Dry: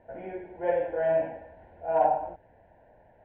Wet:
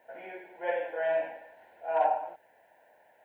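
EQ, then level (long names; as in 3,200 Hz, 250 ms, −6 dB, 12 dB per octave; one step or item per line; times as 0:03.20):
high-pass filter 310 Hz 6 dB per octave
spectral tilt +4.5 dB per octave
0.0 dB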